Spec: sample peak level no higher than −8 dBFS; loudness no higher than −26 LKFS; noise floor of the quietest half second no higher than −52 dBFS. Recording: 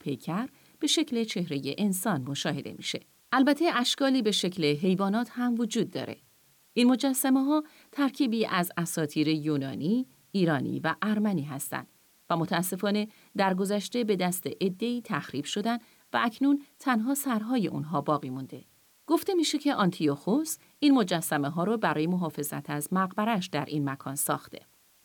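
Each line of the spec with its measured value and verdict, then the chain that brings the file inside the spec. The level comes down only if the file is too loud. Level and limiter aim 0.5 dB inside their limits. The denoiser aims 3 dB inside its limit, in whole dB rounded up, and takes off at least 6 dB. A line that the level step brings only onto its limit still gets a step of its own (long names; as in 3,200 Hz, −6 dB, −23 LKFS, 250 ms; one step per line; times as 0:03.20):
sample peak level −12.5 dBFS: in spec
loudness −28.5 LKFS: in spec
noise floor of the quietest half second −63 dBFS: in spec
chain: no processing needed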